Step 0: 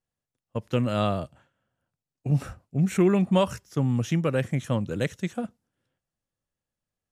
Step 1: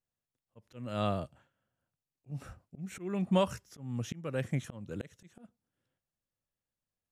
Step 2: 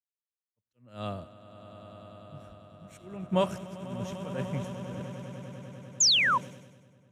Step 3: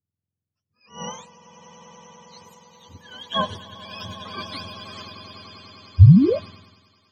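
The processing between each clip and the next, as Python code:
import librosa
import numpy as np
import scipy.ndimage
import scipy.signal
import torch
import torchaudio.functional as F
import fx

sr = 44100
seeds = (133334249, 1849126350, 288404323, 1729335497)

y1 = fx.auto_swell(x, sr, attack_ms=353.0)
y1 = F.gain(torch.from_numpy(y1), -5.5).numpy()
y2 = fx.echo_swell(y1, sr, ms=99, loudest=8, wet_db=-10.0)
y2 = fx.spec_paint(y2, sr, seeds[0], shape='fall', start_s=6.0, length_s=0.38, low_hz=920.0, high_hz=7400.0, level_db=-24.0)
y2 = fx.band_widen(y2, sr, depth_pct=100)
y2 = F.gain(torch.from_numpy(y2), -5.5).numpy()
y3 = fx.octave_mirror(y2, sr, pivot_hz=780.0)
y3 = F.gain(torch.from_numpy(y3), 4.5).numpy()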